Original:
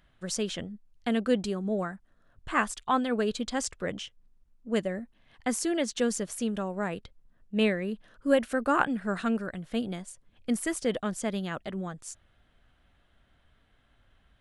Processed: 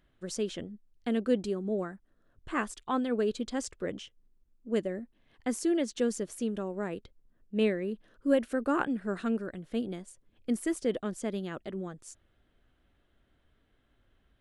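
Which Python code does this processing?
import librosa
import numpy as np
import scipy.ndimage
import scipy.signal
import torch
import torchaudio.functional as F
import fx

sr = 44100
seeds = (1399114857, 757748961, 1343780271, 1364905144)

y = fx.curve_eq(x, sr, hz=(180.0, 360.0, 730.0), db=(0, 7, -2))
y = y * librosa.db_to_amplitude(-4.5)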